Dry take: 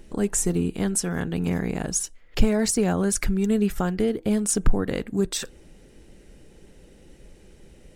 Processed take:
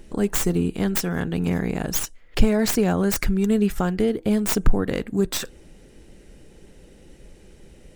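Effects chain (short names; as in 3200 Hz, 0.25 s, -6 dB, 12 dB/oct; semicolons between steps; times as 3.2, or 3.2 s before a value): tracing distortion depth 0.12 ms; gain +2 dB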